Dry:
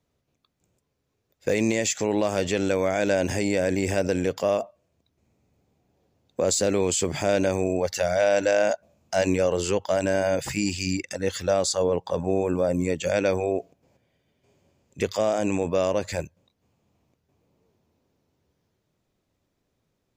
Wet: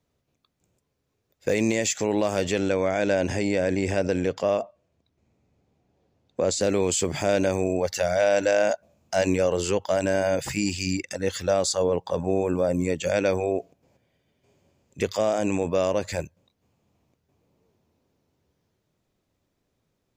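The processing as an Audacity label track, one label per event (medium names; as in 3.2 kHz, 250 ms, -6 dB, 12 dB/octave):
2.600000	6.610000	distance through air 56 m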